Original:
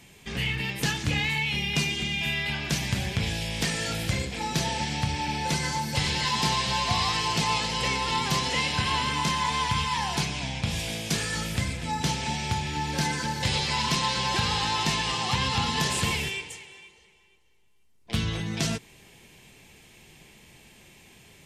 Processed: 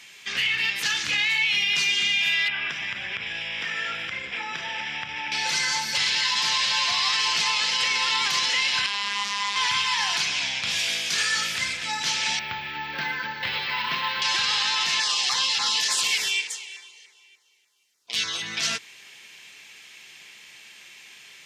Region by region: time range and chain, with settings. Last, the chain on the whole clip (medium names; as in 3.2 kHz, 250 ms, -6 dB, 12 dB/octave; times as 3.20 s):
2.48–5.32 s: compression, threshold -28 dBFS + Savitzky-Golay filter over 25 samples
8.86–9.56 s: robot voice 202 Hz + loudspeaker Doppler distortion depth 0.31 ms
12.39–14.22 s: distance through air 400 m + careless resampling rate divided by 2×, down filtered, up hold
15.00–18.42 s: tone controls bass -8 dB, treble +5 dB + LFO notch saw down 3.4 Hz 980–3300 Hz
whole clip: high-pass 840 Hz 6 dB/octave; high-order bell 2.8 kHz +9.5 dB 2.8 oct; peak limiter -14 dBFS